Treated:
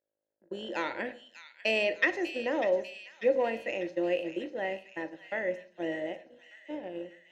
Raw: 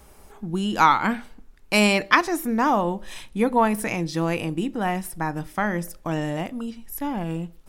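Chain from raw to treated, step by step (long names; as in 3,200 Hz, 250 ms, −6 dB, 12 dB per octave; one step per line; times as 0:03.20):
hum with harmonics 50 Hz, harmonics 32, −38 dBFS −4 dB per octave
noise gate −26 dBFS, range −41 dB
thirty-one-band graphic EQ 315 Hz +10 dB, 1,000 Hz +7 dB, 4,000 Hz +4 dB, 6,300 Hz +9 dB, 10,000 Hz −7 dB
on a send: delay with a high-pass on its return 625 ms, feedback 56%, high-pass 2,500 Hz, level −8 dB
on the sum: convolution reverb RT60 0.55 s, pre-delay 20 ms, DRR 13 dB
in parallel at −8.5 dB: gain into a clipping stage and back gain 11 dB
on the sum: formant filter e
speed change +5%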